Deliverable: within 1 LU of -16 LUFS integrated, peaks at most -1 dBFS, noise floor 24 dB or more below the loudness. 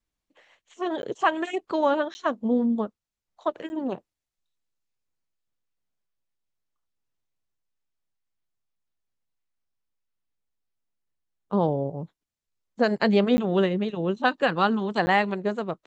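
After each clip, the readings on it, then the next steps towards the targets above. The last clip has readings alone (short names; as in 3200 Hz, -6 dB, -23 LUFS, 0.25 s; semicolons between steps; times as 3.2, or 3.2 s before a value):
dropouts 5; longest dropout 10 ms; loudness -25.5 LUFS; peak -8.5 dBFS; loudness target -16.0 LUFS
-> interpolate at 1.02/2.14/3.69/13.37/15.06, 10 ms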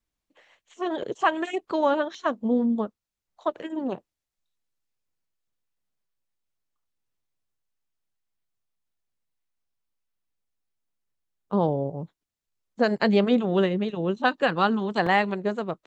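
dropouts 0; loudness -25.5 LUFS; peak -8.5 dBFS; loudness target -16.0 LUFS
-> gain +9.5 dB; limiter -1 dBFS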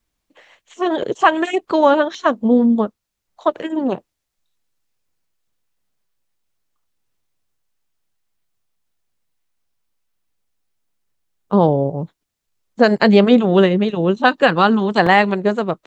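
loudness -16.0 LUFS; peak -1.0 dBFS; noise floor -78 dBFS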